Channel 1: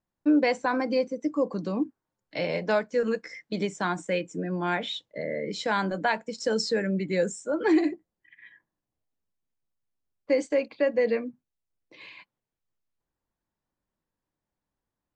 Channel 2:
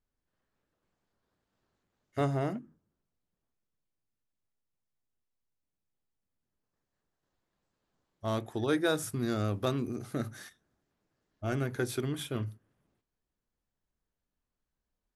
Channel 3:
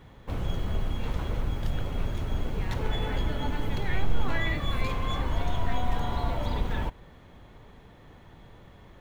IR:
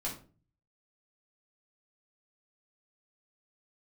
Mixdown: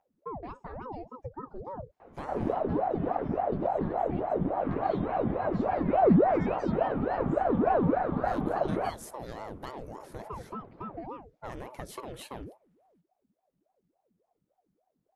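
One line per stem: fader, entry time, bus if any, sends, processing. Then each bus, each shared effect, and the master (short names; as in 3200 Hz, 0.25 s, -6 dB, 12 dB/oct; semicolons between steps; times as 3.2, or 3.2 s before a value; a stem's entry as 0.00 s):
-11.5 dB, 0.00 s, bus A, no send, tilt -4.5 dB/oct; upward compressor, threshold -52 dBFS; chorus voices 2, 0.28 Hz, delay 11 ms, depth 1.8 ms
-2.0 dB, 0.00 s, bus A, no send, dry
+0.5 dB, 2.00 s, no bus, no send, LPF 1100 Hz 12 dB/oct
bus A: 0.0 dB, compressor 10:1, threshold -33 dBFS, peak gain reduction 11.5 dB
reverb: off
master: ring modulator with a swept carrier 470 Hz, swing 65%, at 3.5 Hz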